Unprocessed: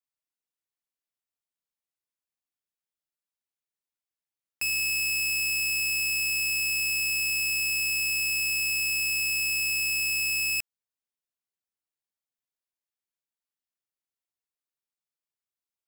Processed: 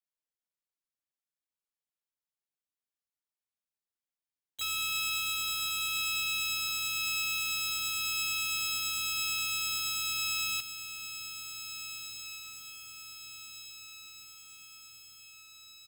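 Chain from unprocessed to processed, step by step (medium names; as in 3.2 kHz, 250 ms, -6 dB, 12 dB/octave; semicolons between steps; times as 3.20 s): harmony voices -12 st -6 dB, +4 st -7 dB, +7 st -1 dB; echo that smears into a reverb 1786 ms, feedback 56%, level -9.5 dB; trim -9 dB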